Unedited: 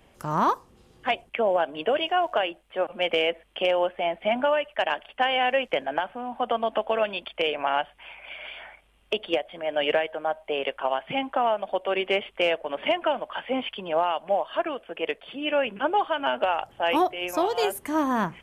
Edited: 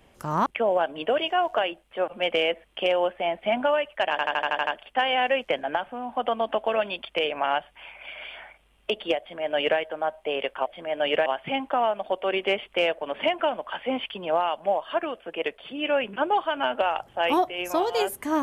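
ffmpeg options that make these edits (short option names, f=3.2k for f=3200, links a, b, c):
-filter_complex "[0:a]asplit=11[a][b][c][d][e][f][g][h][i][j][k];[a]atrim=end=0.462[l];[b]atrim=start=1.248:end=4.982[m];[c]atrim=start=4.898:end=4.982[n];[d]atrim=start=4.898:end=4.982[o];[e]atrim=start=4.898:end=4.982[p];[f]atrim=start=4.898:end=4.982[q];[g]atrim=start=4.898:end=4.982[r];[h]atrim=start=4.898:end=4.982[s];[i]atrim=start=4.898:end=10.892[t];[j]atrim=start=9.418:end=10.022[u];[k]atrim=start=10.888[v];[l][m]acrossfade=d=0.004:c1=hsin:c2=hsin[w];[w][n]acrossfade=d=0.004:c1=hsin:c2=hsin[x];[x][o]acrossfade=d=0.004:c1=hsin:c2=hsin[y];[y][p]acrossfade=d=0.004:c1=hsin:c2=hsin[z];[z][q]acrossfade=d=0.004:c1=hsin:c2=hsin[aa];[aa][r]acrossfade=d=0.004:c1=hsin:c2=hsin[ab];[ab][s]acrossfade=d=0.004:c1=hsin:c2=hsin[ac];[ac][t]acrossfade=d=0.004:c1=hsin:c2=hsin[ad];[ad][u]acrossfade=d=0.004:c1=hsin:c2=hsin[ae];[ae][v]acrossfade=d=0.004:c1=hsin:c2=hsin"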